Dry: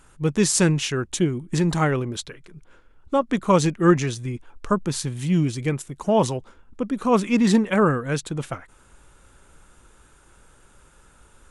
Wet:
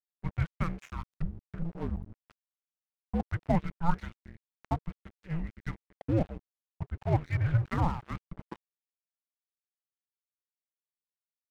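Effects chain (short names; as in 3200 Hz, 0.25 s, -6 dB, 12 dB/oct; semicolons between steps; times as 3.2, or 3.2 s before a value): mistuned SSB -340 Hz 190–2600 Hz; 1.02–3.2 treble ducked by the level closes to 470 Hz, closed at -22.5 dBFS; crossover distortion -32 dBFS; gain -7.5 dB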